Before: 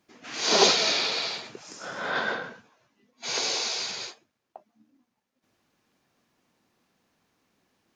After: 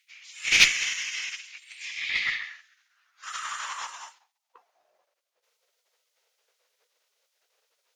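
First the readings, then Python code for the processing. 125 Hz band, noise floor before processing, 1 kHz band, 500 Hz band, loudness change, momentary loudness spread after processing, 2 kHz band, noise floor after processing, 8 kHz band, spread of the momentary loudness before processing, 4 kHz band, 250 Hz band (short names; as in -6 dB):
n/a, -80 dBFS, -8.0 dB, -24.5 dB, 0.0 dB, 22 LU, +5.0 dB, -81 dBFS, -1.0 dB, 20 LU, -2.5 dB, under -15 dB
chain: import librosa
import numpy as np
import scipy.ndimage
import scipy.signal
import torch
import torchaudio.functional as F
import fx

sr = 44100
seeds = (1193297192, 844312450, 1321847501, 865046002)

y = fx.spec_gate(x, sr, threshold_db=-15, keep='weak')
y = fx.filter_sweep_highpass(y, sr, from_hz=2300.0, to_hz=490.0, start_s=1.99, end_s=5.46, q=5.4)
y = fx.cheby_harmonics(y, sr, harmonics=(6,), levels_db=(-26,), full_scale_db=-5.5)
y = F.gain(torch.from_numpy(y), 3.5).numpy()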